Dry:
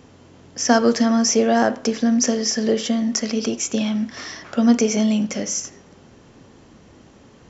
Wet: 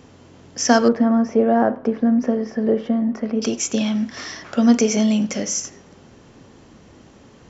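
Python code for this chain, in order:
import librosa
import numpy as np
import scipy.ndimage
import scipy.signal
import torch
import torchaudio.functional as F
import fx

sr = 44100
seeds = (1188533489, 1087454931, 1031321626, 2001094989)

y = fx.lowpass(x, sr, hz=1200.0, slope=12, at=(0.88, 3.42))
y = y * 10.0 ** (1.0 / 20.0)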